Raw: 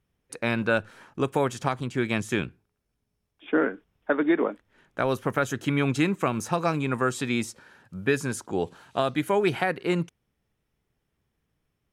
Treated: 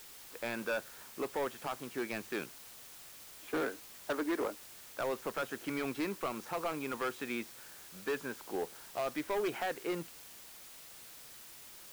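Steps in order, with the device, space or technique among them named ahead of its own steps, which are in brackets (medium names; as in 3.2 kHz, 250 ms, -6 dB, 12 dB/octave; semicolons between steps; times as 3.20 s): aircraft radio (band-pass 330–2600 Hz; hard clipper -23 dBFS, distortion -9 dB; white noise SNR 13 dB); trim -6.5 dB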